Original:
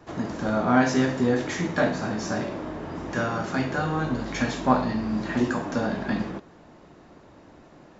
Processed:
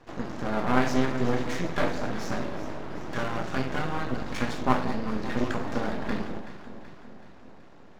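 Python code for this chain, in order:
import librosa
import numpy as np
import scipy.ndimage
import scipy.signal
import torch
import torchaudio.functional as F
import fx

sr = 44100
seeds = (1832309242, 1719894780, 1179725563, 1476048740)

y = scipy.signal.sosfilt(scipy.signal.butter(2, 6300.0, 'lowpass', fs=sr, output='sos'), x)
y = np.maximum(y, 0.0)
y = fx.echo_alternate(y, sr, ms=189, hz=950.0, feedback_pct=75, wet_db=-10.0)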